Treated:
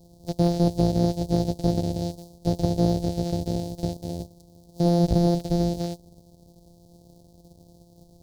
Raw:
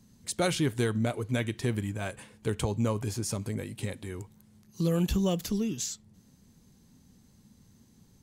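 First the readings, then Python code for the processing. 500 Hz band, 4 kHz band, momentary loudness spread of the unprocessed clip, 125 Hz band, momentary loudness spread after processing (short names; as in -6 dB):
+6.0 dB, +0.5 dB, 10 LU, +7.0 dB, 12 LU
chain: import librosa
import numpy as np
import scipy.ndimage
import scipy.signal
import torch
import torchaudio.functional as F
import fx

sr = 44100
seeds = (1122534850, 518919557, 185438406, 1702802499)

y = np.r_[np.sort(x[:len(x) // 256 * 256].reshape(-1, 256), axis=1).ravel(), x[len(x) // 256 * 256:]]
y = scipy.signal.sosfilt(scipy.signal.cheby1(3, 1.0, [710.0, 4300.0], 'bandstop', fs=sr, output='sos'), y)
y = fx.slew_limit(y, sr, full_power_hz=76.0)
y = y * 10.0 ** (7.5 / 20.0)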